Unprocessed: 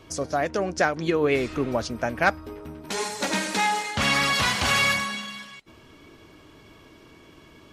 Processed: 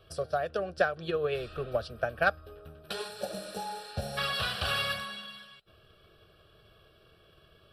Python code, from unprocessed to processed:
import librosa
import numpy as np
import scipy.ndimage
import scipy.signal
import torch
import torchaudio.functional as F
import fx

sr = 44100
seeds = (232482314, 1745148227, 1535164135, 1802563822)

y = fx.fixed_phaser(x, sr, hz=1400.0, stages=8)
y = fx.spec_repair(y, sr, seeds[0], start_s=3.17, length_s=0.98, low_hz=920.0, high_hz=5400.0, source='before')
y = fx.transient(y, sr, attack_db=5, sustain_db=0)
y = y * 10.0 ** (-6.0 / 20.0)